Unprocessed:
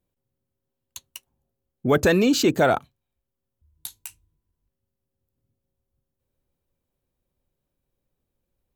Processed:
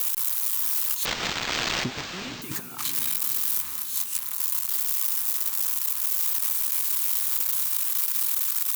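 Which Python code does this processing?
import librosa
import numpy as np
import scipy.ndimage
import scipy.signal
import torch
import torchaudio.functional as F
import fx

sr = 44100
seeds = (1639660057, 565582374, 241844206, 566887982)

y = x + 0.5 * 10.0 ** (-25.0 / 20.0) * np.diff(np.sign(x), prepend=np.sign(x[:1]))
y = fx.low_shelf_res(y, sr, hz=770.0, db=-9.0, q=3.0)
y = fx.over_compress(y, sr, threshold_db=-34.0, ratio=-0.5)
y = fx.echo_diffused(y, sr, ms=465, feedback_pct=54, wet_db=-9.5)
y = fx.resample_linear(y, sr, factor=4, at=(1.05, 2.42))
y = y * 10.0 ** (7.0 / 20.0)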